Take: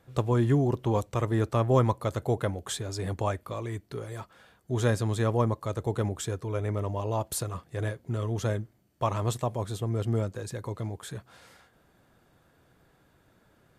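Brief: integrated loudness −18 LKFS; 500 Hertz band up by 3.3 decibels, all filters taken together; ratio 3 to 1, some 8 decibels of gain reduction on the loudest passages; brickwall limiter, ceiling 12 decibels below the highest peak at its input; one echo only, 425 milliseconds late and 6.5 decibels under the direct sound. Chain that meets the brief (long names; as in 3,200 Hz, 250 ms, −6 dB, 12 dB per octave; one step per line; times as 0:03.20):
parametric band 500 Hz +4 dB
downward compressor 3 to 1, threshold −27 dBFS
brickwall limiter −26.5 dBFS
single-tap delay 425 ms −6.5 dB
level +18.5 dB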